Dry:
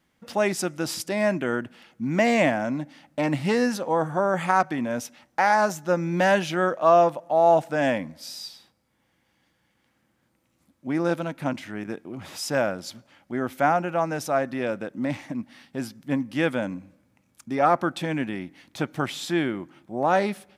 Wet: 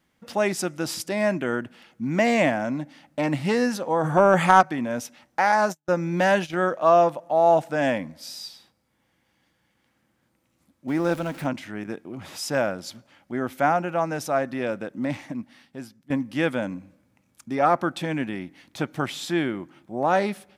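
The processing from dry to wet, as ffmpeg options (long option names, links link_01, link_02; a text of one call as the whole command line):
ffmpeg -i in.wav -filter_complex "[0:a]asplit=3[link_01][link_02][link_03];[link_01]afade=type=out:start_time=4.03:duration=0.02[link_04];[link_02]acontrast=76,afade=type=in:start_time=4.03:duration=0.02,afade=type=out:start_time=4.6:duration=0.02[link_05];[link_03]afade=type=in:start_time=4.6:duration=0.02[link_06];[link_04][link_05][link_06]amix=inputs=3:normalize=0,asettb=1/sr,asplit=3[link_07][link_08][link_09];[link_07]atrim=end=5.524[link_10];[link_08]atrim=start=5.52:end=6.71,asetpts=PTS-STARTPTS,afade=type=in:duration=0.004:curve=qsin,afade=type=out:start_time=1.186:duration=0.004:curve=qsin,agate=range=-42dB:threshold=-31dB:ratio=16:release=100:detection=peak[link_11];[link_09]atrim=start=6.706[link_12];[link_10][link_11]acrossfade=duration=0.004:curve1=hsin:curve2=qsin[link_13];[link_13][link_12]acrossfade=duration=0.004:curve1=qsin:curve2=hsin,asettb=1/sr,asplit=3[link_14][link_15][link_16];[link_14]atrim=end=10.884[link_17];[link_15]atrim=start=10.88:end=11.46,asetpts=PTS-STARTPTS,afade=type=in:duration=0.004:curve=qsin,afade=type=out:start_time=0.576:duration=0.004:curve=qsin,aeval=exprs='val(0)+0.5*0.0133*sgn(val(0))':channel_layout=same[link_18];[link_16]atrim=start=11.456[link_19];[link_17][link_18]acrossfade=duration=0.004:curve1=hsin:curve2=qsin[link_20];[link_20][link_19]acrossfade=duration=0.004:curve1=qsin:curve2=hsin,asplit=2[link_21][link_22];[link_21]atrim=end=16.1,asetpts=PTS-STARTPTS,afade=type=out:start_time=15.23:duration=0.87:silence=0.177828[link_23];[link_22]atrim=start=16.1,asetpts=PTS-STARTPTS,afade=type=in:duration=0.004:curve=hsin:silence=0.177828[link_24];[link_23][link_24]concat=n=2:v=0:a=1" out.wav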